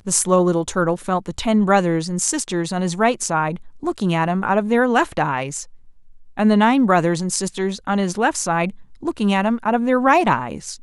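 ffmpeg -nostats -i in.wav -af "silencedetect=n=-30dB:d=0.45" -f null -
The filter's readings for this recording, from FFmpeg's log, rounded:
silence_start: 5.64
silence_end: 6.37 | silence_duration: 0.74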